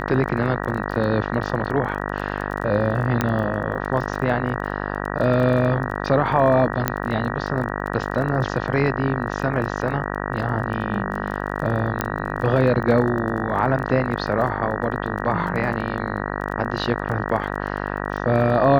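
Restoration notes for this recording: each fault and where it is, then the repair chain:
buzz 50 Hz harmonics 38 -27 dBFS
crackle 20/s -29 dBFS
3.21 pop -6 dBFS
6.88 pop -4 dBFS
12.01 pop -6 dBFS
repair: de-click; de-hum 50 Hz, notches 38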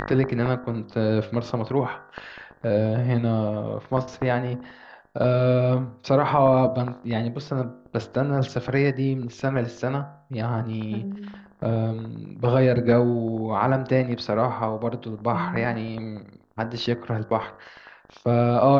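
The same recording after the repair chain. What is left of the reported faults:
12.01 pop

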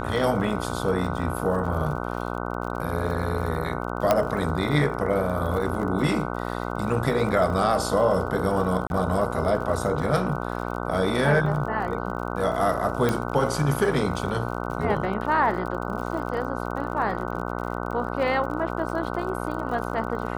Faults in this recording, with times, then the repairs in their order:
buzz 60 Hz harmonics 25 -30 dBFS
crackle 54/s -34 dBFS
4.11 pop -6 dBFS
8.87–8.9 gap 31 ms
13.09 pop -10 dBFS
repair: de-click; de-hum 60 Hz, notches 25; interpolate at 8.87, 31 ms

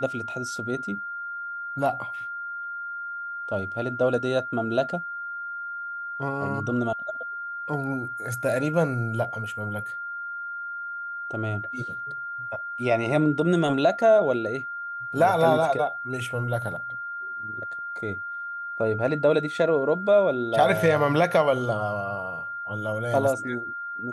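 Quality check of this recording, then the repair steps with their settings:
tone 1400 Hz -31 dBFS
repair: notch 1400 Hz, Q 30

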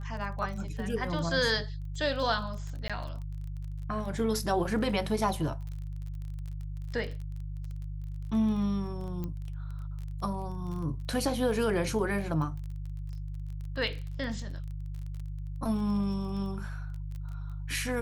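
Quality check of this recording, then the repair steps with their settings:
crackle 24/s -38 dBFS
hum 50 Hz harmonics 3 -37 dBFS
2.88–2.9 gap 16 ms
9.24 pop -24 dBFS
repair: de-click; de-hum 50 Hz, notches 3; interpolate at 2.88, 16 ms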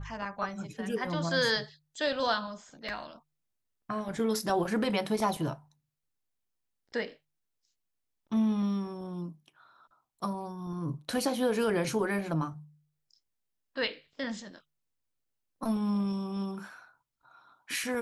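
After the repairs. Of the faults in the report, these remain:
none

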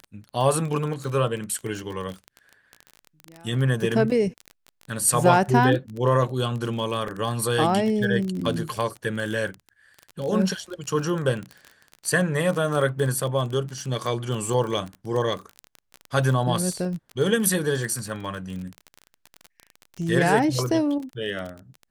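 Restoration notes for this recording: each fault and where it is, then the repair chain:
crackle 27/s -28 dBFS
7.08 gap 2.9 ms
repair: de-click; interpolate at 7.08, 2.9 ms

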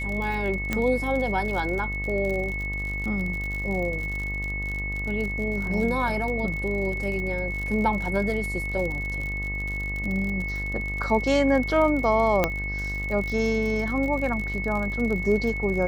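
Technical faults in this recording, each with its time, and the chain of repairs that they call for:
buzz 50 Hz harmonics 25 -32 dBFS
crackle 56/s -30 dBFS
tone 2200 Hz -30 dBFS
0.73 pop -11 dBFS
12.44 pop -7 dBFS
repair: de-click; de-hum 50 Hz, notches 25; notch 2200 Hz, Q 30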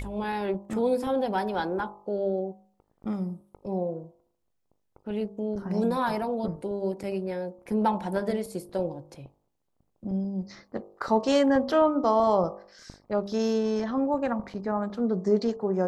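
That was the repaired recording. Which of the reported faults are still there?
0.73 pop

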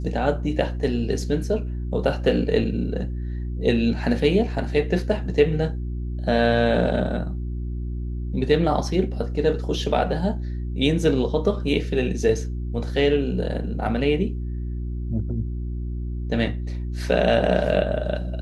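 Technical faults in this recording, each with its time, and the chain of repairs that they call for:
hum 60 Hz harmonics 6 -28 dBFS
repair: de-hum 60 Hz, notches 6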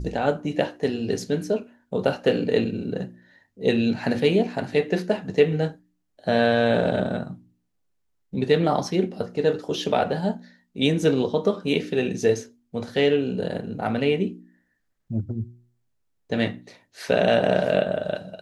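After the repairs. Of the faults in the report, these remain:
none

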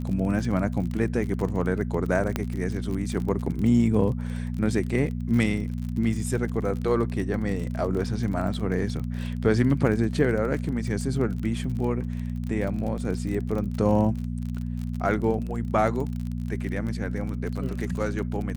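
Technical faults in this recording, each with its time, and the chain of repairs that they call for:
crackle 38/s -31 dBFS
hum 60 Hz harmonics 4 -30 dBFS
2.36 pop -11 dBFS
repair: de-click; de-hum 60 Hz, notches 4

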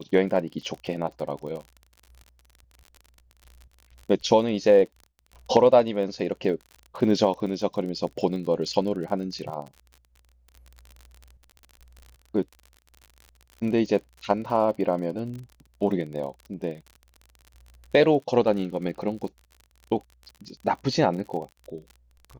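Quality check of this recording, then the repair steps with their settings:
crackle 45/s -35 dBFS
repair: de-click

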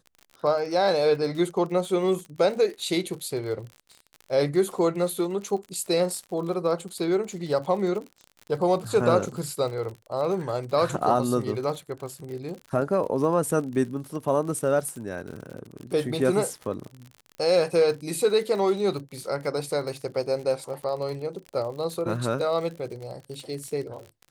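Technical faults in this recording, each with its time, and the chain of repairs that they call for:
crackle 54/s -34 dBFS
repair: de-click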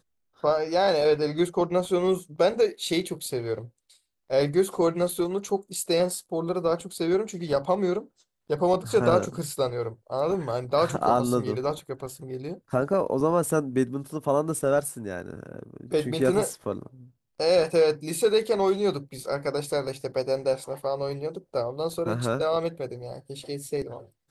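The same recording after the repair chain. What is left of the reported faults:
none

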